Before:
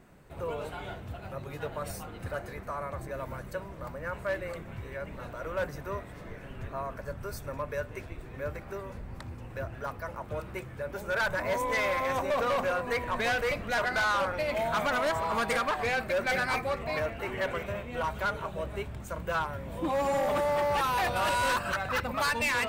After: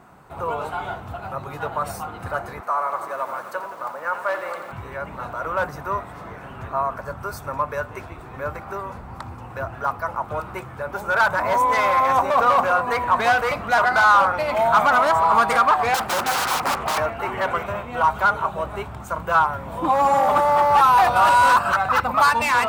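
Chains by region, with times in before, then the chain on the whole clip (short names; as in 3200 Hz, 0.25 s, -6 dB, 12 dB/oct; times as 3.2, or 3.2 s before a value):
2.6–4.72 HPF 380 Hz + lo-fi delay 86 ms, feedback 80%, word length 9-bit, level -10.5 dB
15.94–16.98 high shelf 2200 Hz +4 dB + wrapped overs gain 26 dB + Doppler distortion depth 0.4 ms
whole clip: HPF 61 Hz; band shelf 1000 Hz +10 dB 1.2 oct; gain +5 dB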